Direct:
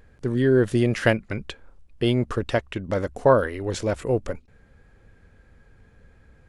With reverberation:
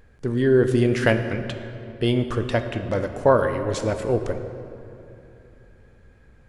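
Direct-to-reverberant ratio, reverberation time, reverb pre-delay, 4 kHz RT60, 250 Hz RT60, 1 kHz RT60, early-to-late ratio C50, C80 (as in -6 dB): 7.0 dB, 2.9 s, 8 ms, 1.7 s, 3.4 s, 2.9 s, 8.5 dB, 9.5 dB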